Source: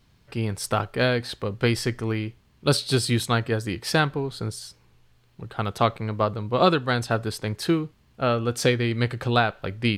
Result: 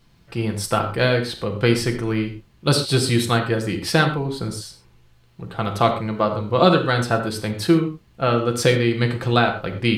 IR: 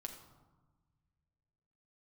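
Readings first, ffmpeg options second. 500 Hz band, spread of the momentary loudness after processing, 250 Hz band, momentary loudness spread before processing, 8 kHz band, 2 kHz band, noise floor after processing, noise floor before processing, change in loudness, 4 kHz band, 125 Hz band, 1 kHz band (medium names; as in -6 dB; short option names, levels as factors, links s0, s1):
+4.5 dB, 10 LU, +5.0 dB, 9 LU, +3.5 dB, +3.5 dB, -55 dBFS, -61 dBFS, +4.0 dB, +3.5 dB, +4.0 dB, +3.5 dB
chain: -filter_complex "[1:a]atrim=start_sample=2205,atrim=end_sample=6174[s0];[0:a][s0]afir=irnorm=-1:irlink=0,volume=2.37"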